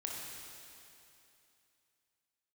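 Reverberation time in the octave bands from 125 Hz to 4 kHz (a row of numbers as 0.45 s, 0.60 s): 2.8 s, 2.9 s, 2.8 s, 2.8 s, 2.8 s, 2.8 s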